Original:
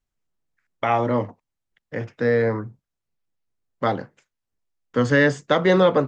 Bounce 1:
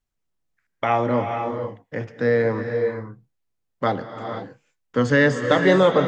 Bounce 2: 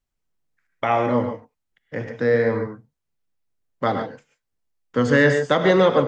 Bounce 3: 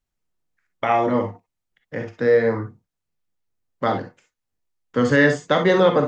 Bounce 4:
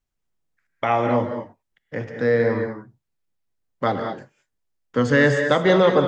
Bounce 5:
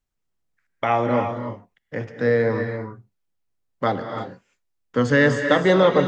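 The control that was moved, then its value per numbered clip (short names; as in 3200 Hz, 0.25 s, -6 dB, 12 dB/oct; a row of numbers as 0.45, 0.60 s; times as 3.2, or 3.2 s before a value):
non-linear reverb, gate: 530, 160, 80, 240, 360 ms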